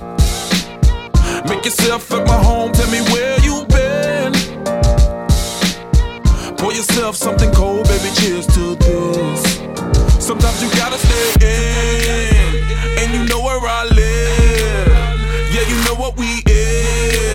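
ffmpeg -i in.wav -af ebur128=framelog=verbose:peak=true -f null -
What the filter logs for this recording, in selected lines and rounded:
Integrated loudness:
  I:         -14.7 LUFS
  Threshold: -24.7 LUFS
Loudness range:
  LRA:         1.0 LU
  Threshold: -34.6 LUFS
  LRA low:   -15.1 LUFS
  LRA high:  -14.1 LUFS
True peak:
  Peak:       -1.0 dBFS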